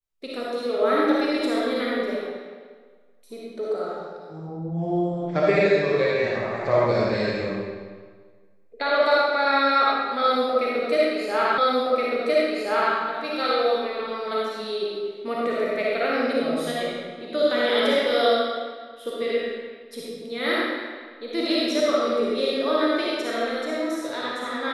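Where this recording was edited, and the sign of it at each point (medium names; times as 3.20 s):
11.58 s: repeat of the last 1.37 s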